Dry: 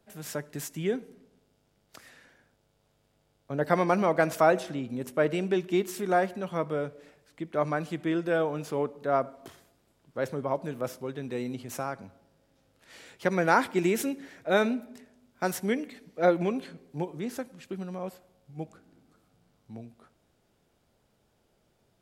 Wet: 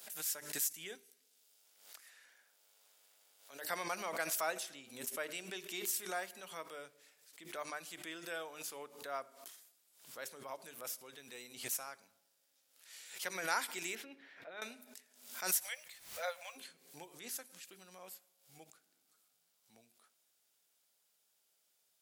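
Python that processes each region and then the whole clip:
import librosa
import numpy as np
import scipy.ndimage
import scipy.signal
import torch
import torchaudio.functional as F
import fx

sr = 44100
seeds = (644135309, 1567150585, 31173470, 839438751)

y = fx.chain(x, sr, fx.peak_eq(hz=150.0, db=-9.5, octaves=1.2),
    fx.band_squash(depth_pct=70), at=(0.95, 3.69))
y = fx.chain(y, sr, fx.air_absorb(metres=380.0),
    fx.over_compress(threshold_db=-32.0, ratio=-1.0), at=(13.95, 14.62))
y = fx.brickwall_highpass(y, sr, low_hz=490.0, at=(15.55, 16.55), fade=0.02)
y = fx.dmg_noise_colour(y, sr, seeds[0], colour='brown', level_db=-47.0, at=(15.55, 16.55), fade=0.02)
y = np.diff(y, prepend=0.0)
y = fx.hum_notches(y, sr, base_hz=50, count=8)
y = fx.pre_swell(y, sr, db_per_s=97.0)
y = y * 10.0 ** (3.0 / 20.0)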